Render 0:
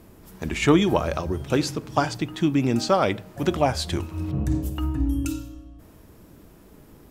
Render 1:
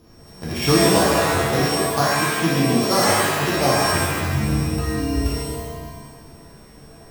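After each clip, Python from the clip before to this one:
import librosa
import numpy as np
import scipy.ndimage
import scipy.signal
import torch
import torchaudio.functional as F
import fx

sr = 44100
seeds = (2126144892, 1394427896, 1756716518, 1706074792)

y = np.r_[np.sort(x[:len(x) // 8 * 8].reshape(-1, 8), axis=1).ravel(), x[len(x) // 8 * 8:]]
y = fx.rev_shimmer(y, sr, seeds[0], rt60_s=1.4, semitones=7, shimmer_db=-2, drr_db=-7.0)
y = F.gain(torch.from_numpy(y), -4.5).numpy()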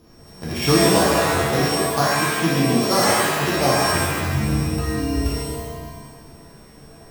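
y = fx.hum_notches(x, sr, base_hz=50, count=2)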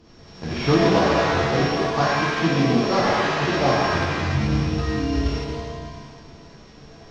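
y = fx.cvsd(x, sr, bps=32000)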